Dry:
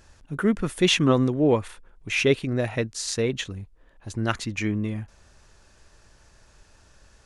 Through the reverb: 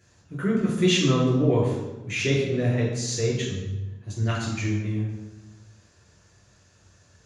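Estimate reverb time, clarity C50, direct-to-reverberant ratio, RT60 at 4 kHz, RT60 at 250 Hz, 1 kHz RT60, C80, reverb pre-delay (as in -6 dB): 1.1 s, 2.5 dB, -4.0 dB, 0.80 s, 1.4 s, 1.0 s, 4.5 dB, 5 ms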